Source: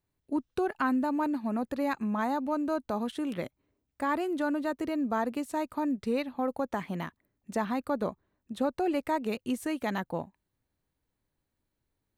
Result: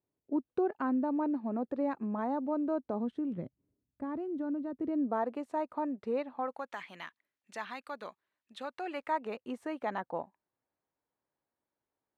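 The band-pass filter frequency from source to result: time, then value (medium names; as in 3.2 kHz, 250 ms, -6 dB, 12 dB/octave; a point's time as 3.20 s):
band-pass filter, Q 0.89
2.84 s 420 Hz
3.35 s 160 Hz
4.72 s 160 Hz
5.25 s 690 Hz
6.25 s 690 Hz
6.75 s 2.7 kHz
8.57 s 2.7 kHz
9.41 s 810 Hz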